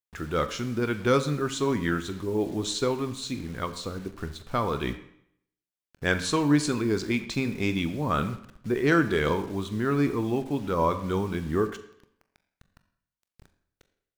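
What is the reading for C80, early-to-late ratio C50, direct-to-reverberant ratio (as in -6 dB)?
14.5 dB, 13.0 dB, 10.0 dB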